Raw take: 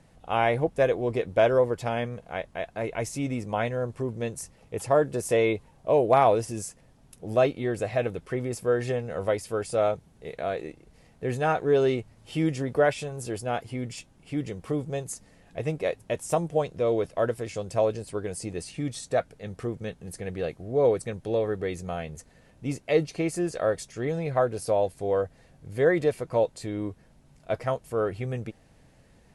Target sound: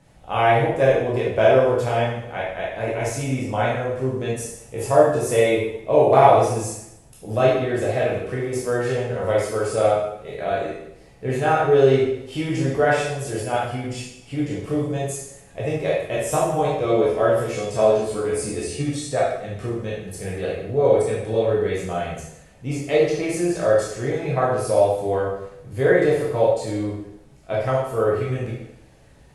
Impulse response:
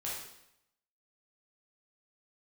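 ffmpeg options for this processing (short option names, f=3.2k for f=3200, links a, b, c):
-filter_complex "[0:a]asettb=1/sr,asplit=3[a][b][c];[a]atrim=end=16.074[d];[b]atrim=start=16.07:end=18.83,asetpts=PTS-STARTPTS,afade=t=in:d=0.004:c=qsin,afade=t=out:st=2.756:d=0.004:c=qsin,asplit=2[e][f];[f]adelay=14,volume=-2.5dB[g];[e][g]amix=inputs=2:normalize=0,atrim=end_sample=121716[h];[c]atrim=start=18.826[i];[d][h]acrossfade=d=0.004:c1=hsin:c2=qsin[j];[j][i]acrossfade=d=0.004:c1=qsin:c2=hsin[k];[1:a]atrim=start_sample=2205[l];[k][l]afir=irnorm=-1:irlink=0,volume=4.5dB"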